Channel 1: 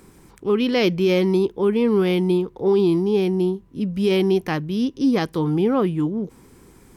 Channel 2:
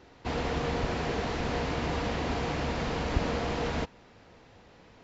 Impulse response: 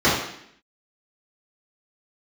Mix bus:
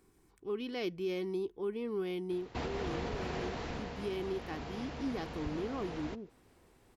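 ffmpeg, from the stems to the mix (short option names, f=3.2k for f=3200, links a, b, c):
-filter_complex "[0:a]aecho=1:1:2.7:0.36,volume=-18.5dB[a];[1:a]adelay=2300,volume=-0.5dB,afade=t=out:st=3.41:d=0.43:silence=0.251189[b];[a][b]amix=inputs=2:normalize=0,alimiter=level_in=3.5dB:limit=-24dB:level=0:latency=1:release=292,volume=-3.5dB"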